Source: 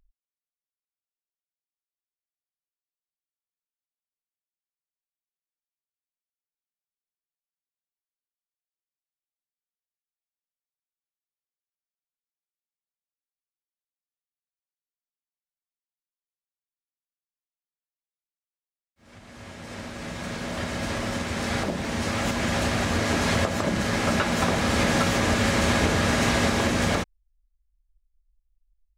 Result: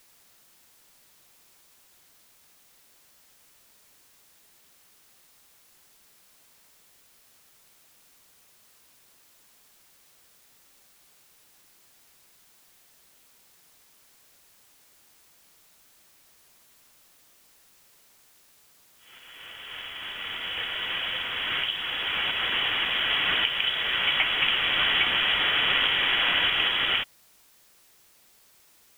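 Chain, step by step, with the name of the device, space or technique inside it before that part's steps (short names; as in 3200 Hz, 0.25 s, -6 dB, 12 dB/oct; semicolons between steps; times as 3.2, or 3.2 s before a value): scrambled radio voice (BPF 350–3100 Hz; inverted band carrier 3600 Hz; white noise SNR 27 dB); gain +2 dB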